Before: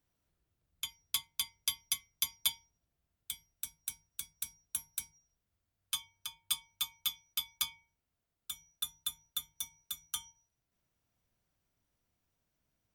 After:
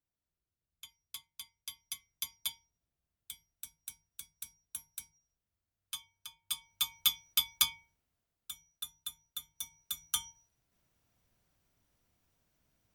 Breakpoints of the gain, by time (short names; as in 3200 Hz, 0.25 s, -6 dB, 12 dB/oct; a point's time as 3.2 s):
1.61 s -12 dB
2.11 s -5.5 dB
6.4 s -5.5 dB
6.98 s +6.5 dB
7.69 s +6.5 dB
8.7 s -4.5 dB
9.37 s -4.5 dB
10.17 s +5.5 dB